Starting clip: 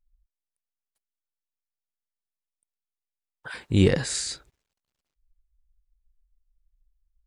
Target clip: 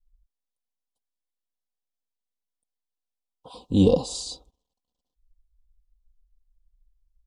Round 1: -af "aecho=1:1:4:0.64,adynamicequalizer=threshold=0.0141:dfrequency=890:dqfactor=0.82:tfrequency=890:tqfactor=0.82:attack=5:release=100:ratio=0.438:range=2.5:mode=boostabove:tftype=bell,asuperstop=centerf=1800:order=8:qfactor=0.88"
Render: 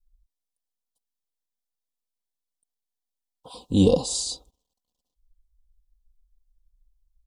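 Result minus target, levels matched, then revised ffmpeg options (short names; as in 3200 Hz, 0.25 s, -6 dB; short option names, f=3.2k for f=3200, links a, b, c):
8000 Hz band +7.0 dB
-af "aecho=1:1:4:0.64,adynamicequalizer=threshold=0.0141:dfrequency=890:dqfactor=0.82:tfrequency=890:tqfactor=0.82:attack=5:release=100:ratio=0.438:range=2.5:mode=boostabove:tftype=bell,asuperstop=centerf=1800:order=8:qfactor=0.88,highshelf=f=6.1k:g=-11.5"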